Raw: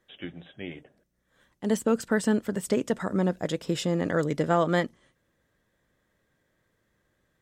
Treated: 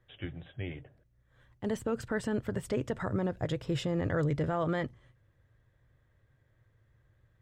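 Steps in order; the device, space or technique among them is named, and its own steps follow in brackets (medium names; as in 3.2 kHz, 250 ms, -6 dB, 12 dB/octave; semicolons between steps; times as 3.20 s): tone controls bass +3 dB, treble -10 dB; car stereo with a boomy subwoofer (resonant low shelf 150 Hz +7.5 dB, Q 3; peak limiter -19.5 dBFS, peak gain reduction 8.5 dB); trim -2 dB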